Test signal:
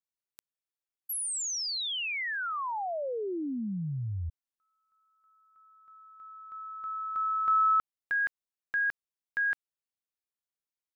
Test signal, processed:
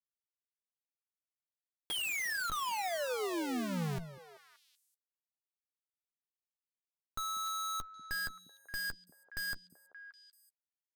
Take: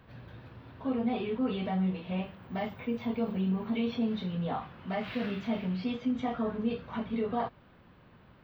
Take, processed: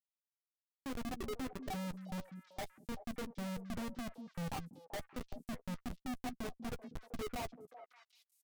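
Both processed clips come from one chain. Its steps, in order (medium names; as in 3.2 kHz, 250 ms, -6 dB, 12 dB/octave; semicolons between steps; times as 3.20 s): expander on every frequency bin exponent 3; three-band isolator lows -14 dB, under 160 Hz, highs -22 dB, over 2.9 kHz; Schmitt trigger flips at -40 dBFS; doubling 12 ms -12 dB; on a send: repeats whose band climbs or falls 192 ms, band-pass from 230 Hz, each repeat 1.4 oct, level -7 dB; on the sum: trim +1 dB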